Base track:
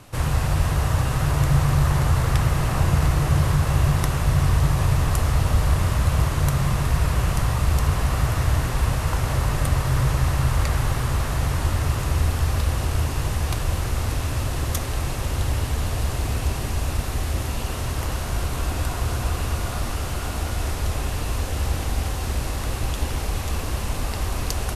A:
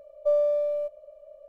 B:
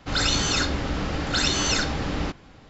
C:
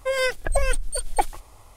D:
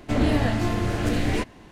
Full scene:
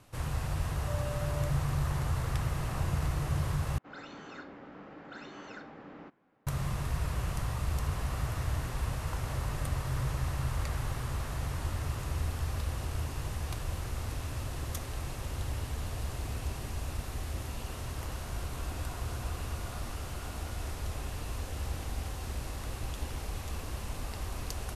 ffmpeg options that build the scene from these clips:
-filter_complex "[0:a]volume=-12dB[a];[1:a]alimiter=level_in=1dB:limit=-24dB:level=0:latency=1:release=71,volume=-1dB[b];[2:a]acrossover=split=160 2200:gain=0.0631 1 0.0891[c][d][e];[c][d][e]amix=inputs=3:normalize=0[f];[a]asplit=2[g][h];[g]atrim=end=3.784[i];[f]atrim=end=2.69,asetpts=PTS-STARTPTS,volume=-17.5dB[j];[h]atrim=start=6.466[k];[b]atrim=end=1.48,asetpts=PTS-STARTPTS,volume=-12.5dB,afade=t=in:d=0.004:c=hsin,afade=t=out:st=1.476:d=0.004:c=hsin,adelay=620[l];[i][j]acrossfade=d=0.004:c1=hsin:c2=hsin[m];[m][k]acrossfade=d=0.004:c1=hsin:c2=hsin[n];[n][l]amix=inputs=2:normalize=0"

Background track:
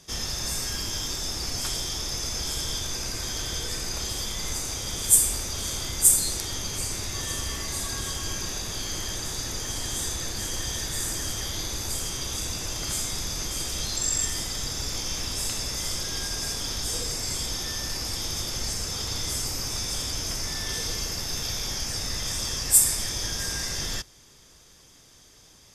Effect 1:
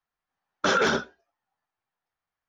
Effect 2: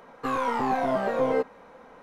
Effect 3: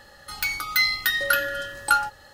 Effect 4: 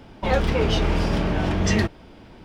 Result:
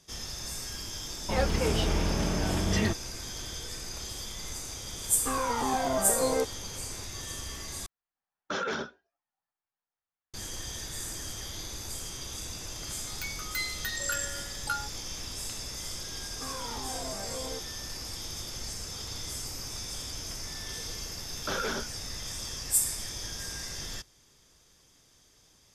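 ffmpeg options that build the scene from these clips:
-filter_complex "[2:a]asplit=2[a][b];[1:a]asplit=2[c][d];[0:a]volume=-8dB[e];[b]alimiter=limit=-19.5dB:level=0:latency=1:release=71[f];[e]asplit=2[g][h];[g]atrim=end=7.864[i];[c]atrim=end=2.48,asetpts=PTS-STARTPTS,volume=-10dB[j];[h]atrim=start=10.336[k];[4:a]atrim=end=2.44,asetpts=PTS-STARTPTS,volume=-6.5dB,afade=t=in:d=0.004:c=hsin,afade=t=out:st=2.436:d=0.004:c=hsin,adelay=1060[l];[a]atrim=end=2.02,asetpts=PTS-STARTPTS,volume=-3.5dB,afade=t=in:d=0.004:c=hsin,afade=t=out:st=2.016:d=0.004:c=hsin,adelay=5020[m];[3:a]atrim=end=2.33,asetpts=PTS-STARTPTS,volume=-13dB,afade=t=in:d=0.004:c=hsin,afade=t=out:st=2.326:d=0.004:c=hsin,adelay=12790[n];[f]atrim=end=2.02,asetpts=PTS-STARTPTS,volume=-12.5dB,afade=t=in:d=0.004:c=hsin,afade=t=out:st=2.016:d=0.004:c=hsin,adelay=16170[o];[d]atrim=end=2.48,asetpts=PTS-STARTPTS,volume=-10.5dB,afade=t=in:d=0.004:c=hsin,afade=t=out:st=2.476:d=0.004:c=hsin,adelay=20830[p];[i][j]acrossfade=d=0.004:c1=hsin:c2=hsin[q];[q][k]acrossfade=d=0.004:c1=hsin:c2=hsin[r];[r][l][m][n][o][p]amix=inputs=6:normalize=0"

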